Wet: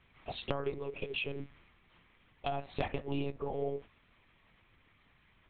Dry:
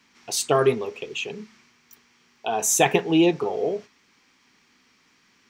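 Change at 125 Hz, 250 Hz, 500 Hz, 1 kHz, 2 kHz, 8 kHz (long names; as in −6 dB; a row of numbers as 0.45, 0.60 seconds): −9.0 dB, −17.5 dB, −14.5 dB, −14.5 dB, −13.5 dB, below −40 dB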